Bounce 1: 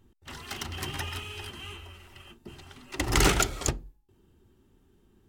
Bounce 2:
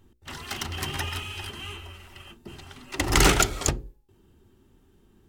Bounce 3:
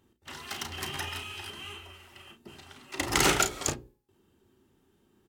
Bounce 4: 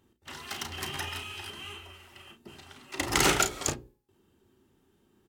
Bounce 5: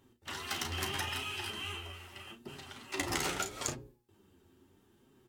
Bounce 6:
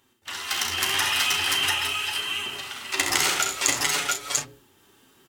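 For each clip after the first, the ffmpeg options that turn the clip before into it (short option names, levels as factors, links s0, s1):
-af "bandreject=f=60:t=h:w=6,bandreject=f=120:t=h:w=6,bandreject=f=180:t=h:w=6,bandreject=f=240:t=h:w=6,bandreject=f=300:t=h:w=6,bandreject=f=360:t=h:w=6,bandreject=f=420:t=h:w=6,bandreject=f=480:t=h:w=6,bandreject=f=540:t=h:w=6,volume=1.58"
-af "highpass=f=190:p=1,aecho=1:1:34|50:0.376|0.15,volume=0.631"
-af anull
-af "acompressor=threshold=0.0224:ratio=8,flanger=delay=7.1:depth=5.2:regen=34:speed=0.78:shape=triangular,volume=1.88"
-filter_complex "[0:a]tiltshelf=f=660:g=-7.5,asplit=2[s0][s1];[s1]aecho=0:1:65|83|689|696:0.447|0.266|0.596|0.668[s2];[s0][s2]amix=inputs=2:normalize=0,dynaudnorm=f=130:g=9:m=1.78,volume=1.12"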